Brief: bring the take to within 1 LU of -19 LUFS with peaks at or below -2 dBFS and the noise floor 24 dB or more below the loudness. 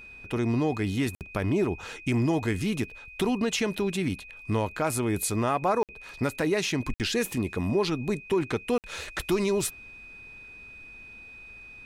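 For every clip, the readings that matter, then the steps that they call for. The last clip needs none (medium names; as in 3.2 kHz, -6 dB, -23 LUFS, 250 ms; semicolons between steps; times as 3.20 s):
dropouts 4; longest dropout 58 ms; steady tone 2.5 kHz; tone level -44 dBFS; loudness -28.0 LUFS; peak level -15.0 dBFS; loudness target -19.0 LUFS
-> interpolate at 1.15/5.83/6.94/8.78 s, 58 ms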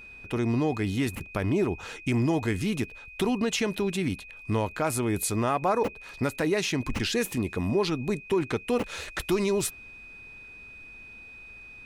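dropouts 0; steady tone 2.5 kHz; tone level -44 dBFS
-> band-stop 2.5 kHz, Q 30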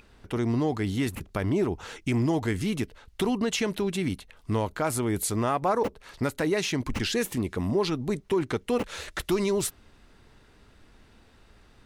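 steady tone not found; loudness -28.5 LUFS; peak level -15.0 dBFS; loudness target -19.0 LUFS
-> trim +9.5 dB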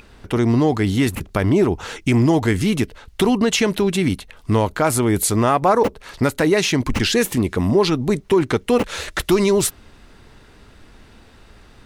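loudness -19.0 LUFS; peak level -5.5 dBFS; noise floor -48 dBFS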